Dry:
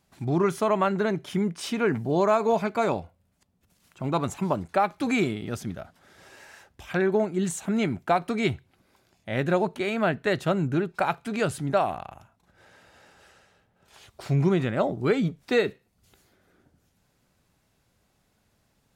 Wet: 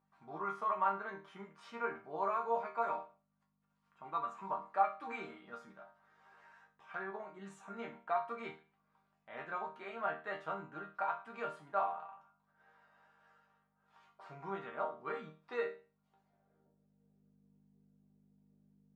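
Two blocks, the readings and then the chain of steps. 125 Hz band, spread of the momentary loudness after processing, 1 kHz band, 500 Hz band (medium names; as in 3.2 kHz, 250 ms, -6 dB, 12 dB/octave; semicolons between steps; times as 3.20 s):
-30.0 dB, 18 LU, -7.5 dB, -16.5 dB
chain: hum 50 Hz, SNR 20 dB; chord resonator D#3 major, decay 0.35 s; band-pass sweep 1.1 kHz -> 340 Hz, 15.81–17.38 s; trim +11 dB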